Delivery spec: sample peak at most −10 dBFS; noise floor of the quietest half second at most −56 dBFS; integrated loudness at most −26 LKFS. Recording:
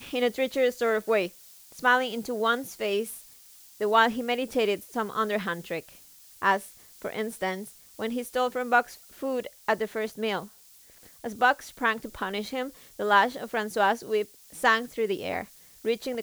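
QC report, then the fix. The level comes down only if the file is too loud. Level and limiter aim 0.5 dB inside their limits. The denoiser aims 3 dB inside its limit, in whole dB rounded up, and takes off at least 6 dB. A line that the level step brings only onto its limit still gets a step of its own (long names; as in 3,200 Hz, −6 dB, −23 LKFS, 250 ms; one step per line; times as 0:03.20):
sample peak −8.0 dBFS: out of spec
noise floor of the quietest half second −54 dBFS: out of spec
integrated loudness −27.5 LKFS: in spec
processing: broadband denoise 6 dB, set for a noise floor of −54 dBFS
brickwall limiter −10.5 dBFS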